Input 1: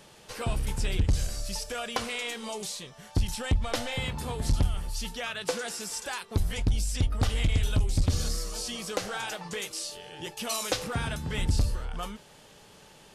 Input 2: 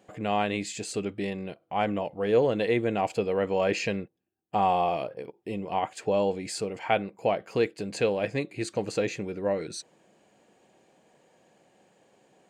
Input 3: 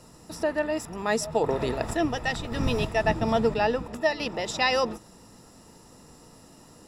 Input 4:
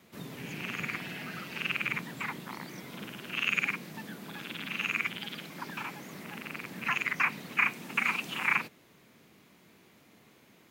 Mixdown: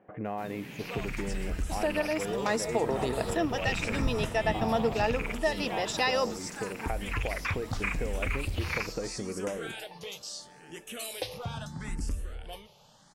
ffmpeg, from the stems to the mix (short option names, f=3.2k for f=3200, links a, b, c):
-filter_complex "[0:a]asplit=2[a][b];[b]afreqshift=0.76[c];[a][c]amix=inputs=2:normalize=1,adelay=500,volume=-3dB[d];[1:a]lowpass=f=2k:w=0.5412,lowpass=f=2k:w=1.3066,acompressor=threshold=-30dB:ratio=6,volume=0dB,asplit=2[e][f];[2:a]adelay=1400,volume=1dB[g];[3:a]adelay=250,volume=-3.5dB[h];[f]apad=whole_len=483027[i];[h][i]sidechaingate=range=-9dB:threshold=-50dB:ratio=16:detection=peak[j];[d][e][g][j]amix=inputs=4:normalize=0,acompressor=threshold=-32dB:ratio=1.5"